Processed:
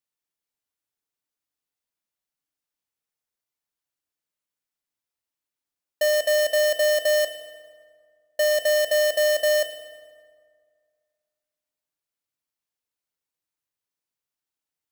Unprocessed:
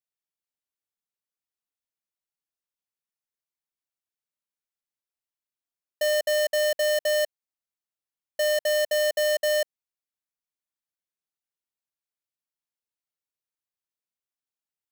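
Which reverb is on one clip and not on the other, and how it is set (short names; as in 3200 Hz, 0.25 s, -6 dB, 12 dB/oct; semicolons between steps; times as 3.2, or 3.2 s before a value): FDN reverb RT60 2 s, low-frequency decay 1.1×, high-frequency decay 0.55×, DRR 6.5 dB; gain +3 dB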